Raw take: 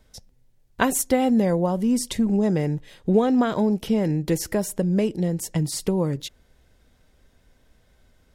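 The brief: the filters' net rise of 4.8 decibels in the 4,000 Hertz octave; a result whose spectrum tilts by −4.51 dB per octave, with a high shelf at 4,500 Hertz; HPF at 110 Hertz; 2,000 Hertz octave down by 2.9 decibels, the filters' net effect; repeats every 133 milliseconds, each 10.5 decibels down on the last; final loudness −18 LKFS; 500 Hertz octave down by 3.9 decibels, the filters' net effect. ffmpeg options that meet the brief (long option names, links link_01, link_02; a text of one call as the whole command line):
ffmpeg -i in.wav -af "highpass=110,equalizer=frequency=500:width_type=o:gain=-4.5,equalizer=frequency=2000:width_type=o:gain=-5.5,equalizer=frequency=4000:width_type=o:gain=4,highshelf=frequency=4500:gain=6.5,aecho=1:1:133|266|399:0.299|0.0896|0.0269,volume=5dB" out.wav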